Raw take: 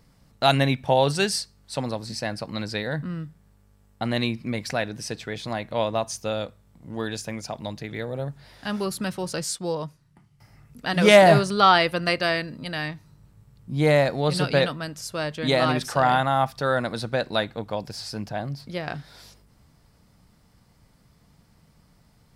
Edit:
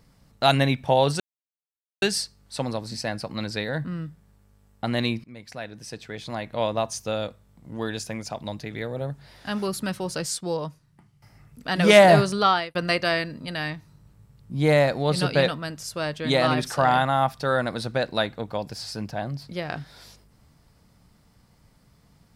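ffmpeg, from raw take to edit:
-filter_complex "[0:a]asplit=4[a][b][c][d];[a]atrim=end=1.2,asetpts=PTS-STARTPTS,afade=t=out:st=1.196:d=0.004:c=hsin,apad=pad_dur=0.82[e];[b]atrim=start=1.2:end=4.42,asetpts=PTS-STARTPTS,afade=t=in:d=0.004:c=hsin,afade=t=out:st=3.216:d=0.004:c=hsin:silence=0.11885[f];[c]atrim=start=4.42:end=11.93,asetpts=PTS-STARTPTS,afade=t=in:d=1.49:silence=0.11885,afade=t=out:st=7.11:d=0.4[g];[d]atrim=start=11.93,asetpts=PTS-STARTPTS,afade=t=in:d=0.004:c=hsin[h];[e][f][g][h]concat=n=4:v=0:a=1"

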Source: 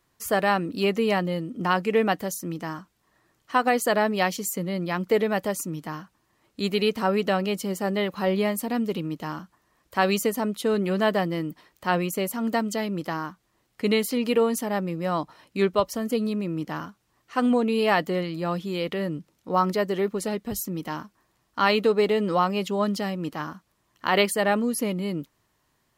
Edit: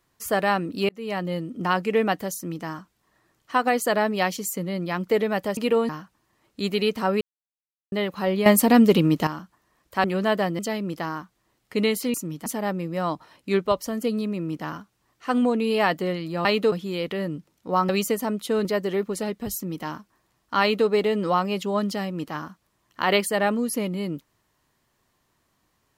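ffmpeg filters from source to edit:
-filter_complex "[0:a]asplit=16[a][b][c][d][e][f][g][h][i][j][k][l][m][n][o][p];[a]atrim=end=0.89,asetpts=PTS-STARTPTS,afade=t=out:st=0.886:d=0.004:c=hsin[q];[b]atrim=start=0.89:end=5.572,asetpts=PTS-STARTPTS,afade=t=in:d=0.45[r];[c]atrim=start=14.218:end=14.542[s];[d]atrim=start=5.888:end=7.21,asetpts=PTS-STARTPTS,afade=t=out:st=1.318:d=0.004:c=hsin[t];[e]atrim=start=7.21:end=7.92,asetpts=PTS-STARTPTS,volume=0[u];[f]atrim=start=7.92:end=8.462,asetpts=PTS-STARTPTS,afade=t=in:d=0.004:c=hsin[v];[g]atrim=start=8.458:end=9.272,asetpts=PTS-STARTPTS,volume=11dB[w];[h]atrim=start=9.268:end=10.042[x];[i]atrim=start=10.798:end=11.352[y];[j]atrim=start=12.668:end=14.222[z];[k]atrim=start=5.568:end=5.892[aa];[l]atrim=start=14.538:end=18.532[ab];[m]atrim=start=21.658:end=21.932[ac];[n]atrim=start=18.528:end=19.702[ad];[o]atrim=start=10.038:end=10.802[ae];[p]atrim=start=19.698[af];[q][r]concat=n=2:v=0:a=1[ag];[ag][s]acrossfade=d=0.004:c1=hsin:c2=hsin[ah];[t][u][v]concat=n=3:v=0:a=1[ai];[ah][ai]acrossfade=d=0.004:c1=hsin:c2=hsin[aj];[aj][w]acrossfade=d=0.004:c1=hsin:c2=hsin[ak];[ak][x]acrossfade=d=0.004:c1=hsin:c2=hsin[al];[al][y]acrossfade=d=0.004:c1=hsin:c2=hsin[am];[am][z]acrossfade=d=0.004:c1=hsin:c2=hsin[an];[an][aa]acrossfade=d=0.004:c1=hsin:c2=hsin[ao];[ao][ab]acrossfade=d=0.004:c1=hsin:c2=hsin[ap];[ap][ac]acrossfade=d=0.004:c1=hsin:c2=hsin[aq];[aq][ad]acrossfade=d=0.004:c1=hsin:c2=hsin[ar];[ar][ae]acrossfade=d=0.004:c1=hsin:c2=hsin[as];[as][af]acrossfade=d=0.004:c1=hsin:c2=hsin"

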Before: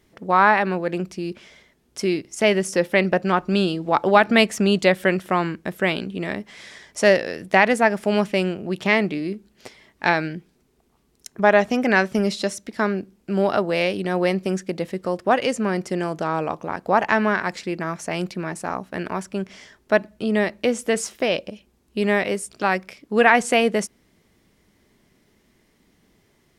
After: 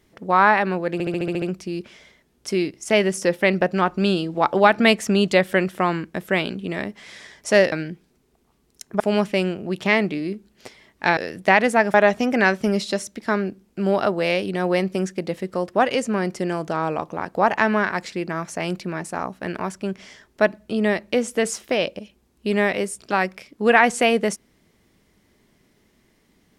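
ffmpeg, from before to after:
-filter_complex "[0:a]asplit=12[a][b][c][d][e][f][g][h][i][j][k][l];[a]atrim=end=1.002[m];[b]atrim=start=0.928:end=1.002[n];[c]atrim=start=0.928:end=1.002[o];[d]atrim=start=0.928:end=1.002[p];[e]atrim=start=0.928:end=1.002[q];[f]atrim=start=0.928:end=1.002[r];[g]atrim=start=0.928:end=1.002[s];[h]atrim=start=0.928:end=7.232[t];[i]atrim=start=10.168:end=11.452[u];[j]atrim=start=7.998:end=10.172[v];[k]atrim=start=7.228:end=8.002[w];[l]atrim=start=11.448[x];[m][n]acrossfade=d=0.004:c1=hsin:c2=hsin[y];[y][o]acrossfade=d=0.004:c1=hsin:c2=hsin[z];[z][p]acrossfade=d=0.004:c1=hsin:c2=hsin[aa];[aa][q]acrossfade=d=0.004:c1=hsin:c2=hsin[ab];[ab][r]acrossfade=d=0.004:c1=hsin:c2=hsin[ac];[ac][s]acrossfade=d=0.004:c1=hsin:c2=hsin[ad];[ad][t]acrossfade=d=0.004:c1=hsin:c2=hsin[ae];[ae][u]acrossfade=d=0.004:c1=hsin:c2=hsin[af];[af][v]acrossfade=d=0.004:c1=hsin:c2=hsin[ag];[ag][w]acrossfade=d=0.004:c1=hsin:c2=hsin[ah];[ah][x]acrossfade=d=0.004:c1=hsin:c2=hsin"

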